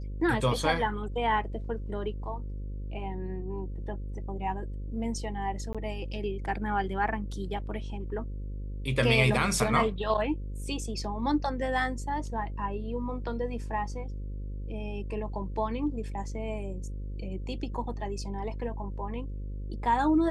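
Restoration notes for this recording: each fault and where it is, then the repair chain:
buzz 50 Hz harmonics 11 -36 dBFS
5.73–5.75 gap 16 ms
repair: de-hum 50 Hz, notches 11; interpolate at 5.73, 16 ms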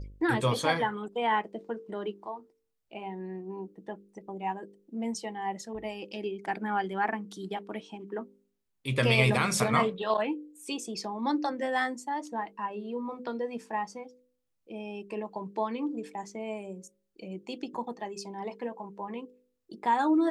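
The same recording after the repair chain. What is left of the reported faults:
none

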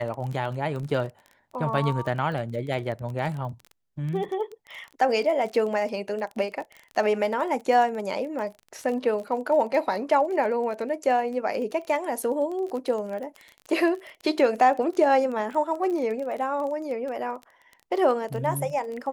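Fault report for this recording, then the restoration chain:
crackle 23/s -32 dBFS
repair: de-click

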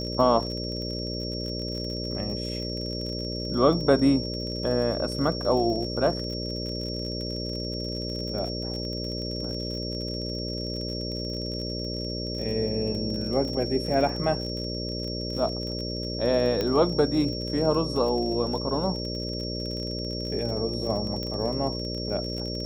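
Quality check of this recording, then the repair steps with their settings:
buzz 60 Hz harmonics 10 -33 dBFS
crackle 39/s -33 dBFS
tone 5500 Hz -34 dBFS
16.61 pop -14 dBFS
21.23 pop -20 dBFS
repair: de-click; notch 5500 Hz, Q 30; de-hum 60 Hz, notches 10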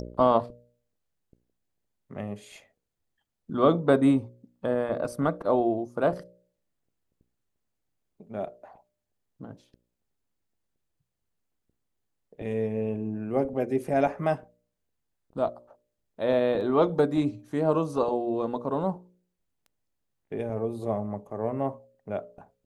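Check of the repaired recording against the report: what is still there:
16.61 pop

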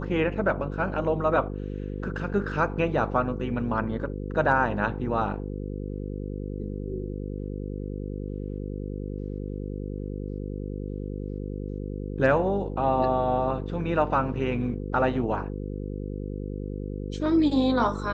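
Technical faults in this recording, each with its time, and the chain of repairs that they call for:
buzz 50 Hz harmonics 10 -33 dBFS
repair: de-hum 50 Hz, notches 10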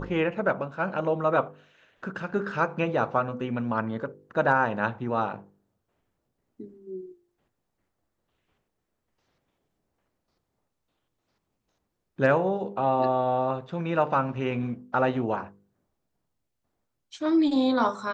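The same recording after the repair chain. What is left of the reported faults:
none

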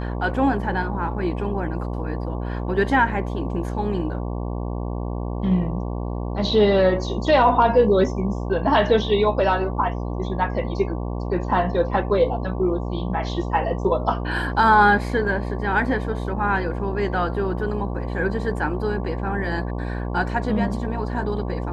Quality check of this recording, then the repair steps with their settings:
buzz 60 Hz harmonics 19 -27 dBFS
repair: de-hum 60 Hz, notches 19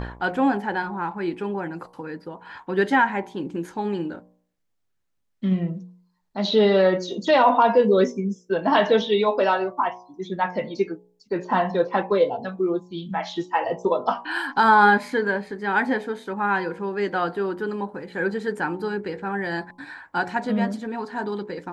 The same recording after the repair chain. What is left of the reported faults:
none

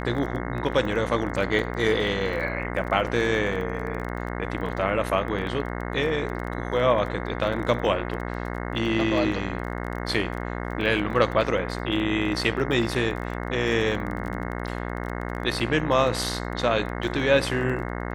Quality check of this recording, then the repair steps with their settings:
buzz 60 Hz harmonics 36 -31 dBFS
crackle 21/s -32 dBFS
1.59 gap 2.3 ms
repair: de-click; de-hum 60 Hz, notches 36; interpolate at 1.59, 2.3 ms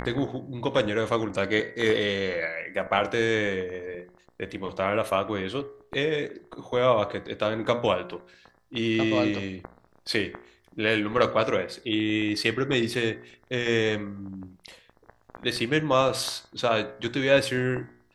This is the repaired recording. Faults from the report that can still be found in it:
none

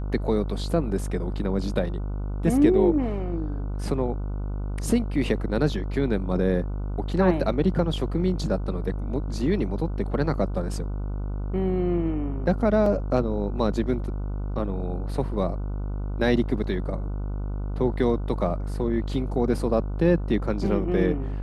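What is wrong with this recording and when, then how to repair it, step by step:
buzz 50 Hz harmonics 30 -29 dBFS
12.86 gap 2.9 ms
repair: de-hum 50 Hz, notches 30; interpolate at 12.86, 2.9 ms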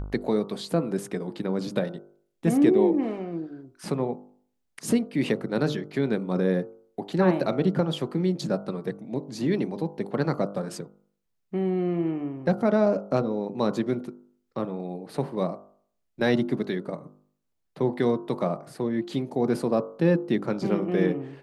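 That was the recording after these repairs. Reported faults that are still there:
none

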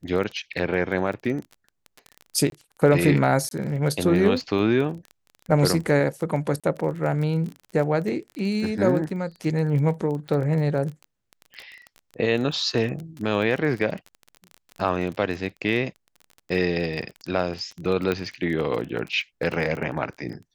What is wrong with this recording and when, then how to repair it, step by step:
crackle 24/s -30 dBFS
2.5–2.52 gap 22 ms
3.49–3.51 gap 22 ms
6.6–6.64 gap 36 ms
18.12 pop -13 dBFS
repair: de-click; interpolate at 2.5, 22 ms; interpolate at 3.49, 22 ms; interpolate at 6.6, 36 ms

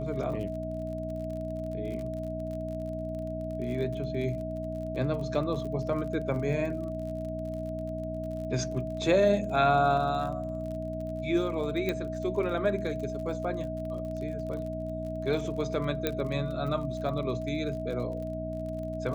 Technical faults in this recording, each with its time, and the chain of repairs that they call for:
crackle 40/s -38 dBFS
hum 60 Hz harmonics 5 -37 dBFS
tone 640 Hz -35 dBFS
11.89 pop -17 dBFS
16.07 pop -13 dBFS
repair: de-click; de-hum 60 Hz, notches 5; notch 640 Hz, Q 30

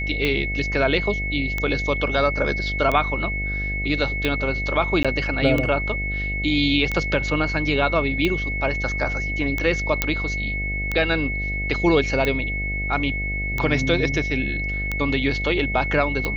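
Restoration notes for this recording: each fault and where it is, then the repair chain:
buzz 50 Hz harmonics 15 -28 dBFS
tick 45 rpm -10 dBFS
tone 2200 Hz -26 dBFS
5.03–5.05 gap 16 ms
10.02 pop -3 dBFS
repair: de-click; de-hum 50 Hz, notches 15; notch 2200 Hz, Q 30; interpolate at 5.03, 16 ms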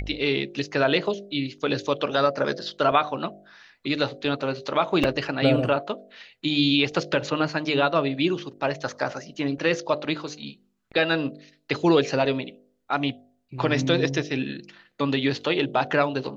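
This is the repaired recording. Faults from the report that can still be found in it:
none

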